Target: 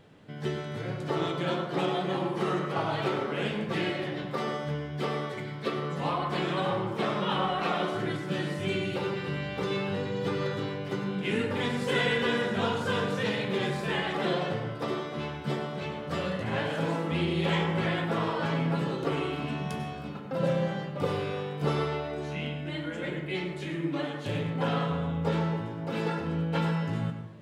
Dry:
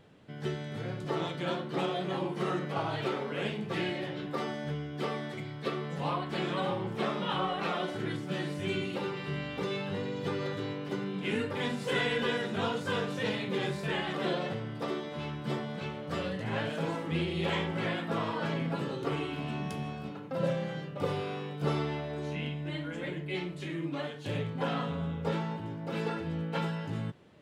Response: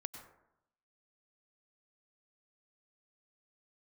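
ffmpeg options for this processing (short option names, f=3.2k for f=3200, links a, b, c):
-filter_complex "[1:a]atrim=start_sample=2205[a];[0:a][a]afir=irnorm=-1:irlink=0,volume=6dB"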